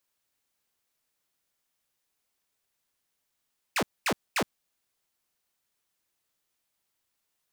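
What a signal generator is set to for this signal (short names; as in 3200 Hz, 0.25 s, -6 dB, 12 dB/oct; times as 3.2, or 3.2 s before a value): burst of laser zaps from 2900 Hz, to 150 Hz, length 0.07 s saw, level -21 dB, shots 3, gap 0.23 s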